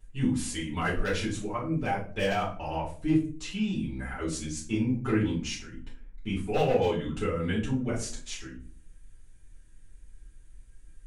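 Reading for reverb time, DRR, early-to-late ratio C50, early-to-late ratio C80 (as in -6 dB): 0.45 s, -8.0 dB, 7.0 dB, 13.0 dB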